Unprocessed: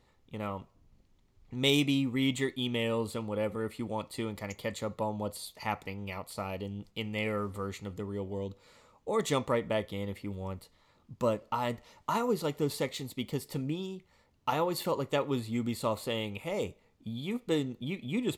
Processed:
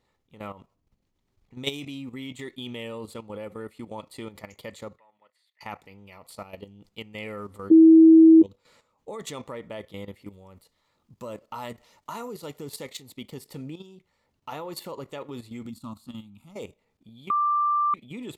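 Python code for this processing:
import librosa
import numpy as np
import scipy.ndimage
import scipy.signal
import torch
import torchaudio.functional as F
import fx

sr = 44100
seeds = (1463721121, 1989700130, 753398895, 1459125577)

y = fx.bandpass_q(x, sr, hz=1900.0, q=6.5, at=(4.98, 5.61))
y = fx.high_shelf(y, sr, hz=5400.0, db=6.0, at=(10.22, 13.02))
y = fx.curve_eq(y, sr, hz=(140.0, 250.0, 460.0, 700.0, 1300.0, 1900.0, 3900.0), db=(0, 5, -30, -14, -6, -21, -7), at=(15.69, 16.55), fade=0.02)
y = fx.edit(y, sr, fx.bleep(start_s=7.7, length_s=0.73, hz=323.0, db=-8.0),
    fx.bleep(start_s=17.3, length_s=0.64, hz=1180.0, db=-17.0), tone=tone)
y = fx.level_steps(y, sr, step_db=12)
y = fx.low_shelf(y, sr, hz=120.0, db=-6.0)
y = F.gain(torch.from_numpy(y), 1.0).numpy()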